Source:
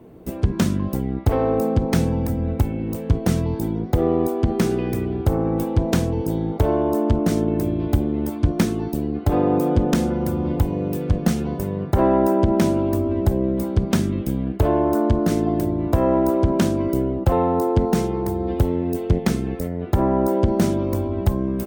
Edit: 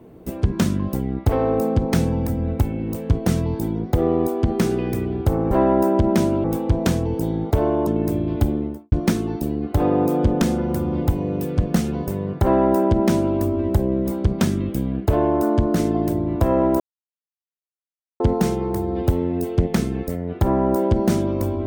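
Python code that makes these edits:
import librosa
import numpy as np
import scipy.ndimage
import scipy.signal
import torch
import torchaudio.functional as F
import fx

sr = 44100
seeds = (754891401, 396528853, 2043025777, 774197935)

y = fx.studio_fade_out(x, sr, start_s=8.04, length_s=0.4)
y = fx.edit(y, sr, fx.cut(start_s=6.94, length_s=0.45),
    fx.duplicate(start_s=11.95, length_s=0.93, to_s=5.51),
    fx.silence(start_s=16.32, length_s=1.4), tone=tone)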